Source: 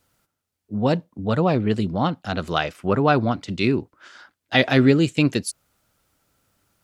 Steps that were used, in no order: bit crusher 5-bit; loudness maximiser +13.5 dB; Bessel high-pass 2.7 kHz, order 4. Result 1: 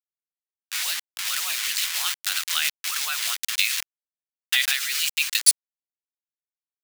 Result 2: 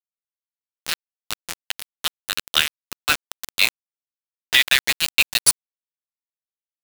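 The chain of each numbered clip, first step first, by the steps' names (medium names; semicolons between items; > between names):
bit crusher > loudness maximiser > Bessel high-pass; Bessel high-pass > bit crusher > loudness maximiser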